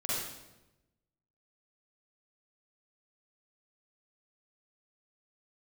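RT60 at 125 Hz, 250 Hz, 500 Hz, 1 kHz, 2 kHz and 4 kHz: 1.4, 1.2, 1.1, 0.90, 0.85, 0.80 seconds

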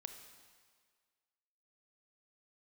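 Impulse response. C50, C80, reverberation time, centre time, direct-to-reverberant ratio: 7.5 dB, 8.5 dB, 1.8 s, 28 ms, 6.0 dB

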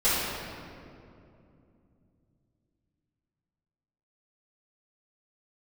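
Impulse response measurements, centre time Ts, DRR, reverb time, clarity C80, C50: 152 ms, −15.0 dB, 2.6 s, −1.0 dB, −3.5 dB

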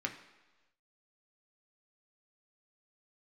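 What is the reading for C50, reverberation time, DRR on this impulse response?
10.5 dB, 1.2 s, 2.5 dB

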